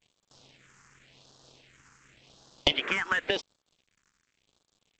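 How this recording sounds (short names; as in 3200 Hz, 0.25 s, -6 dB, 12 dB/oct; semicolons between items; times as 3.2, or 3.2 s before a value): a quantiser's noise floor 8-bit, dither none; phasing stages 4, 0.91 Hz, lowest notch 600–2200 Hz; G.722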